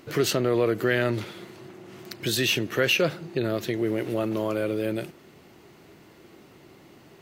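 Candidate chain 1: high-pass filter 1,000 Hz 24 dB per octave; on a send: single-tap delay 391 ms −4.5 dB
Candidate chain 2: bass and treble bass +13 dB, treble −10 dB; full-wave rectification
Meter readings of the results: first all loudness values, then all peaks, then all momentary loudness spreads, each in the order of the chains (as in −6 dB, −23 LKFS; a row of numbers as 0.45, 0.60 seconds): −29.0, −26.0 LKFS; −9.5, −7.5 dBFS; 19, 20 LU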